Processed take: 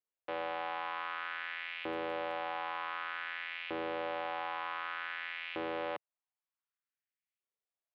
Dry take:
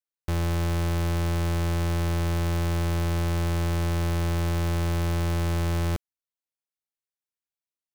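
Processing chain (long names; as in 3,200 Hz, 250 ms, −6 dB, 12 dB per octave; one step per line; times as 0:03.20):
single-sideband voice off tune −270 Hz 170–3,500 Hz
0:01.67–0:02.31: surface crackle 11 per second −50 dBFS
auto-filter high-pass saw up 0.54 Hz 380–2,500 Hz
level −3 dB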